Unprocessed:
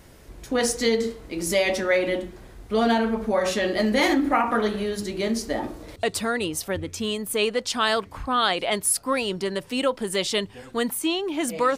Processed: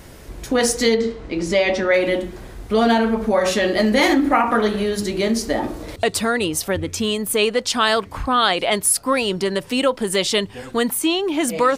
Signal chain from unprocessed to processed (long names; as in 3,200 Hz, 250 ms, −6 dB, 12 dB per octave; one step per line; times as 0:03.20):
in parallel at −1.5 dB: downward compressor, threshold −30 dBFS, peak gain reduction 13 dB
0:00.94–0:01.94: on the sum: high-frequency loss of the air 110 metres
level +3 dB